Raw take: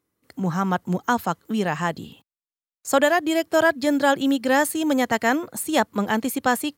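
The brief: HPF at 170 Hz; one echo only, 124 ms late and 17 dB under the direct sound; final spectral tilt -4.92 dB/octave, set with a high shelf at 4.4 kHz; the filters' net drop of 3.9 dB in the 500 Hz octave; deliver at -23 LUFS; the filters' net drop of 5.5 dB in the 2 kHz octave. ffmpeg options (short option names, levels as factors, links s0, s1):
-af "highpass=170,equalizer=f=500:t=o:g=-4.5,equalizer=f=2000:t=o:g=-5.5,highshelf=f=4400:g=-7,aecho=1:1:124:0.141,volume=1.33"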